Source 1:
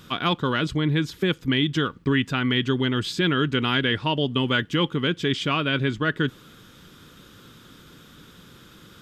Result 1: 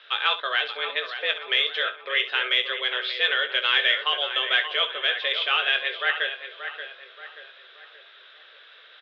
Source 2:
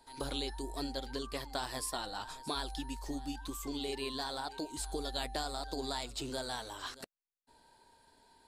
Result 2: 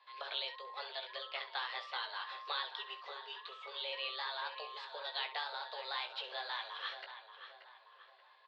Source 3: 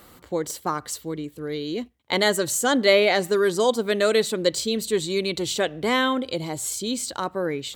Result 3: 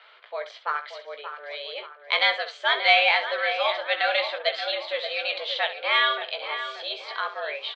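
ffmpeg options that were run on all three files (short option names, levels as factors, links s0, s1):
-filter_complex "[0:a]tiltshelf=f=970:g=-9,asplit=2[s0][s1];[s1]adelay=580,lowpass=f=2800:p=1,volume=0.355,asplit=2[s2][s3];[s3]adelay=580,lowpass=f=2800:p=1,volume=0.45,asplit=2[s4][s5];[s5]adelay=580,lowpass=f=2800:p=1,volume=0.45,asplit=2[s6][s7];[s7]adelay=580,lowpass=f=2800:p=1,volume=0.45,asplit=2[s8][s9];[s9]adelay=580,lowpass=f=2800:p=1,volume=0.45[s10];[s2][s4][s6][s8][s10]amix=inputs=5:normalize=0[s11];[s0][s11]amix=inputs=2:normalize=0,highpass=f=350:t=q:w=0.5412,highpass=f=350:t=q:w=1.307,lowpass=f=3400:t=q:w=0.5176,lowpass=f=3400:t=q:w=0.7071,lowpass=f=3400:t=q:w=1.932,afreqshift=130,aeval=exprs='0.708*(cos(1*acos(clip(val(0)/0.708,-1,1)))-cos(1*PI/2))+0.0141*(cos(2*acos(clip(val(0)/0.708,-1,1)))-cos(2*PI/2))':c=same,asplit=2[s12][s13];[s13]aecho=0:1:18|66:0.398|0.237[s14];[s12][s14]amix=inputs=2:normalize=0,volume=0.794"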